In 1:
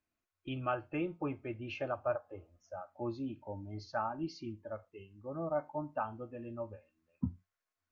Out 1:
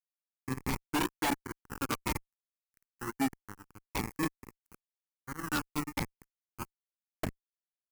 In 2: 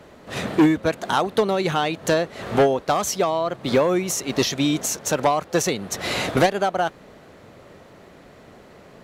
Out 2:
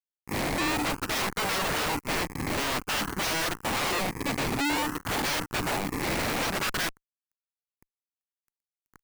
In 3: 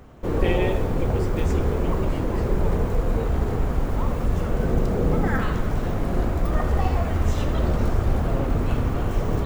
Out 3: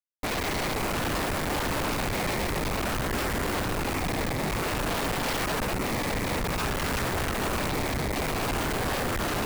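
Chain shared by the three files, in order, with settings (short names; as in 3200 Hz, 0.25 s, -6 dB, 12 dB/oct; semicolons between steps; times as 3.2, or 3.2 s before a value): bell 290 Hz +15 dB 0.22 oct; notches 60/120/180/240/300 Hz; LFO low-pass saw down 3 Hz 950–4400 Hz; decimation with a swept rate 24×, swing 60% 0.53 Hz; fuzz box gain 25 dB, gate -33 dBFS; fixed phaser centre 1500 Hz, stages 4; wavefolder -23.5 dBFS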